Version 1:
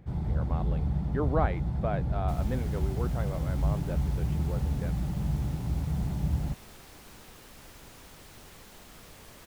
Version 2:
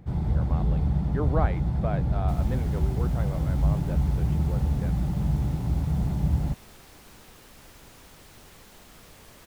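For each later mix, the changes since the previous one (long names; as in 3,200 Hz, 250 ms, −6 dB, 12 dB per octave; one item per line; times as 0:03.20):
first sound +4.5 dB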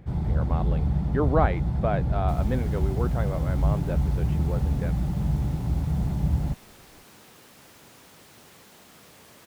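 speech +5.5 dB
second sound: add high-pass filter 120 Hz 12 dB per octave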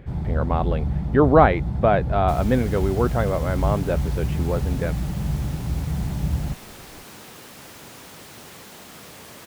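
speech +9.0 dB
second sound +9.0 dB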